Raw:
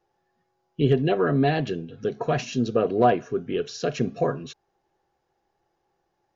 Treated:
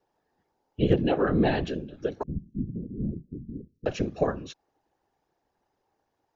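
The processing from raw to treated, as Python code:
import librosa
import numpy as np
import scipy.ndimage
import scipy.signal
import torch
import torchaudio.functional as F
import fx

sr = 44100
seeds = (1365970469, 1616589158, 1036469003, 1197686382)

y = fx.whisperise(x, sr, seeds[0])
y = fx.cheby2_lowpass(y, sr, hz=820.0, order=4, stop_db=60, at=(2.23, 3.86))
y = y * librosa.db_to_amplitude(-2.5)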